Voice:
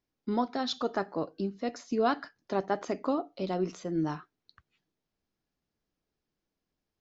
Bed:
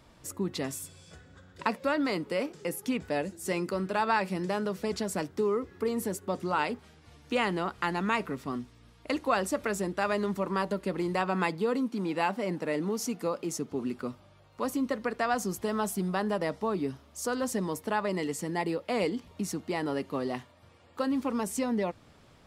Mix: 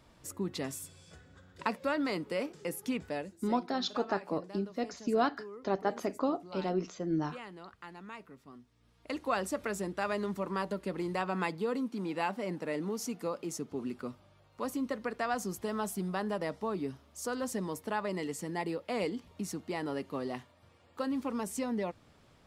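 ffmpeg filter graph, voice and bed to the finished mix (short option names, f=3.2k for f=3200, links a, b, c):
-filter_complex "[0:a]adelay=3150,volume=-1.5dB[a];[1:a]volume=10dB,afade=t=out:st=2.99:d=0.48:silence=0.188365,afade=t=in:st=8.65:d=0.67:silence=0.211349[b];[a][b]amix=inputs=2:normalize=0"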